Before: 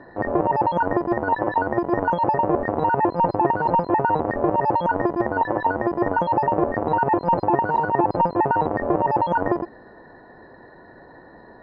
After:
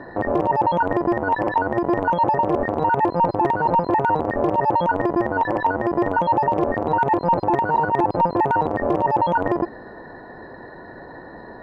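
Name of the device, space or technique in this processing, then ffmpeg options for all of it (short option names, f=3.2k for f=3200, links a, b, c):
clipper into limiter: -af "asoftclip=type=hard:threshold=-10dB,alimiter=limit=-17.5dB:level=0:latency=1:release=124,volume=7dB"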